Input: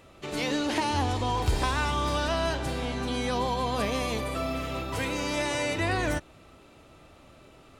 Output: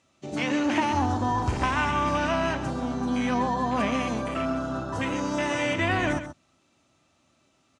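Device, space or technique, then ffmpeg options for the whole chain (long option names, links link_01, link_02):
car door speaker: -filter_complex "[0:a]asettb=1/sr,asplit=3[link_01][link_02][link_03];[link_01]atrim=end=4.494[link_04];[link_02]atrim=start=4.49:end=5.59,asetpts=PTS-STARTPTS,afade=type=in:duration=0.004:curve=qsin,afade=type=out:start_time=1.096:duration=0.004:curve=qsin,bandreject=frequency=2300:width=8.2[link_05];[link_03]atrim=start=5.586[link_06];[link_04][link_05]acrossfade=duration=0.004:curve1=hsin:curve2=qsin[link_07];[link_07][link_06]acrossfade=duration=0.004:curve1=qsin:curve2=hsin,afwtdn=0.02,highpass=93,equalizer=frequency=240:width_type=q:width=4:gain=4,equalizer=frequency=450:width_type=q:width=4:gain=-9,equalizer=frequency=6100:width_type=q:width=4:gain=6,lowpass=frequency=8400:width=0.5412,lowpass=frequency=8400:width=1.3066,highshelf=frequency=5200:gain=11.5,aecho=1:1:133:0.282,volume=3dB"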